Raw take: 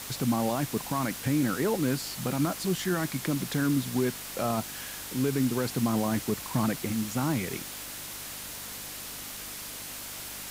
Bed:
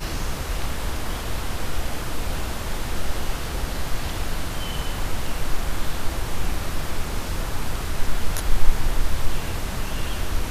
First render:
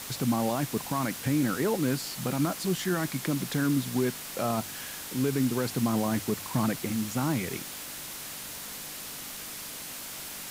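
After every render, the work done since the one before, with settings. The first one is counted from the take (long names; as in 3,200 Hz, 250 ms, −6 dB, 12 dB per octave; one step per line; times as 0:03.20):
hum removal 50 Hz, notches 2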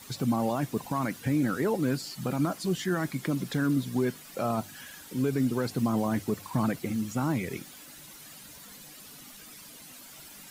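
broadband denoise 12 dB, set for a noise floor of −40 dBFS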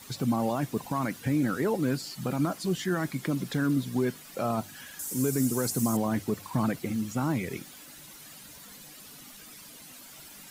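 0:04.99–0:05.97: high shelf with overshoot 5,100 Hz +12.5 dB, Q 1.5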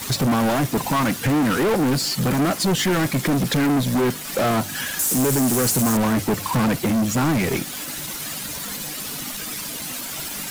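leveller curve on the samples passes 5
transient designer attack +1 dB, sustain −3 dB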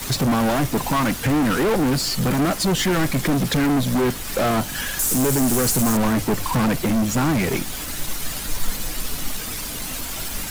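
mix in bed −9.5 dB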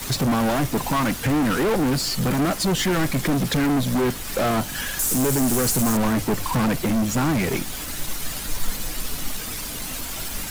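level −1.5 dB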